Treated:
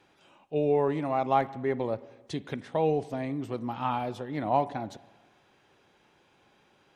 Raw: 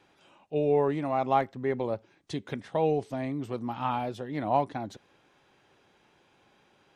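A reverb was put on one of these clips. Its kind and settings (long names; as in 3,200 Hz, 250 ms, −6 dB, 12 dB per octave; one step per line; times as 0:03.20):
spring reverb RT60 1.2 s, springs 40/44/51 ms, chirp 30 ms, DRR 17 dB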